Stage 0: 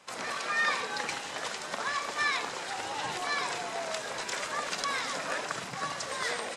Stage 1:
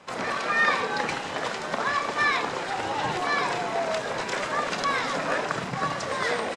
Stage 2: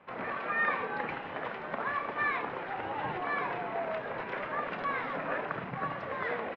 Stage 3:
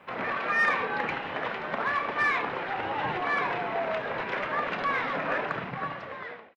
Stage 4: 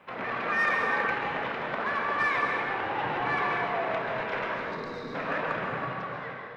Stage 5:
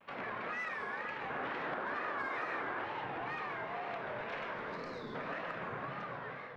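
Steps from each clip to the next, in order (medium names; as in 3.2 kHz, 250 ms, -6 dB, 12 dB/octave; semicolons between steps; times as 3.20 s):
low-pass 2.7 kHz 6 dB/octave; bass shelf 480 Hz +5.5 dB; doubling 31 ms -13.5 dB; trim +6.5 dB
low-pass 2.6 kHz 24 dB/octave; trim -7 dB
fade out at the end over 1.11 s; treble shelf 3 kHz +9.5 dB; in parallel at -3.5 dB: saturation -27 dBFS, distortion -13 dB
time-frequency box 4.54–5.15 s, 510–3600 Hz -17 dB; plate-style reverb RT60 2 s, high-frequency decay 0.55×, pre-delay 120 ms, DRR 0.5 dB; trim -2.5 dB
compression, threshold -31 dBFS, peak gain reduction 9 dB; painted sound noise, 1.30–2.84 s, 250–1900 Hz -36 dBFS; wow and flutter 140 cents; trim -6 dB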